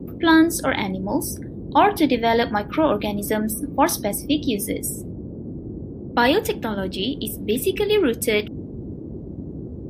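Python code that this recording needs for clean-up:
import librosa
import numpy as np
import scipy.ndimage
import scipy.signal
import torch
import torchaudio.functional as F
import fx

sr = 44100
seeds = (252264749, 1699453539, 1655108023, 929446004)

y = fx.noise_reduce(x, sr, print_start_s=8.96, print_end_s=9.46, reduce_db=30.0)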